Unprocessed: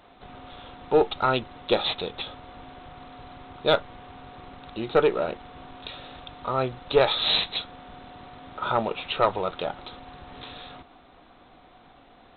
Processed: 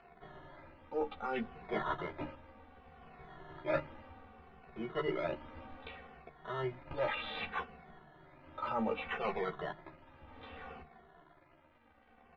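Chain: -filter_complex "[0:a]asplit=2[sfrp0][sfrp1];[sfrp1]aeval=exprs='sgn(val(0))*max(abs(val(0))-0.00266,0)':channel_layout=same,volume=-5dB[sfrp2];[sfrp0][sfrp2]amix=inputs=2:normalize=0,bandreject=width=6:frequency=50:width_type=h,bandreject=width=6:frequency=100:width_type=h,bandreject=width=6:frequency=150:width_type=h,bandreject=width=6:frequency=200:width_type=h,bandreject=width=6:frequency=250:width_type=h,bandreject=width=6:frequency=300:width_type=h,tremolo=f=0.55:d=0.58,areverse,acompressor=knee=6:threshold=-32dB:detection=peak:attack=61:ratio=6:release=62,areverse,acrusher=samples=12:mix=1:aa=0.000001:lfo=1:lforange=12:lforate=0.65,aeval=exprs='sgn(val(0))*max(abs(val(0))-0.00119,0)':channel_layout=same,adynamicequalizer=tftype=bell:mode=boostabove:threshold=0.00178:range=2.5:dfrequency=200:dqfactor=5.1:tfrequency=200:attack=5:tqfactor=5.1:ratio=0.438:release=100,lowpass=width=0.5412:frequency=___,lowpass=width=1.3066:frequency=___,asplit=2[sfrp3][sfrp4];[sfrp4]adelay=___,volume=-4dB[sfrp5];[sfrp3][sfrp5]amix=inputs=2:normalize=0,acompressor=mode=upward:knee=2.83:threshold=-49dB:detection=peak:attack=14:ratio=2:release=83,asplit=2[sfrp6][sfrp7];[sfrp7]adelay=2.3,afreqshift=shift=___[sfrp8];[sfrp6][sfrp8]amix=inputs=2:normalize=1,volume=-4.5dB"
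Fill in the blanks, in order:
2.7k, 2.7k, 13, -0.64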